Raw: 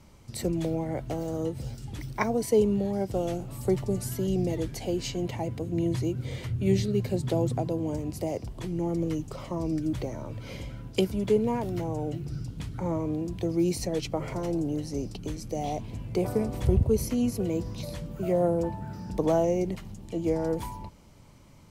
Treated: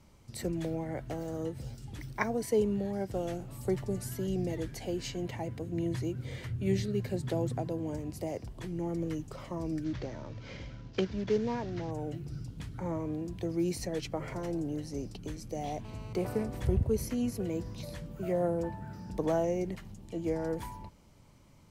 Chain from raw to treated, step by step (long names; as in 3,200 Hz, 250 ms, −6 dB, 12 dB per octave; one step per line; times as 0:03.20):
0:09.84–0:11.91: variable-slope delta modulation 32 kbit/s
dynamic equaliser 1,700 Hz, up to +7 dB, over −57 dBFS, Q 2.6
0:15.85–0:16.43: phone interference −46 dBFS
level −5.5 dB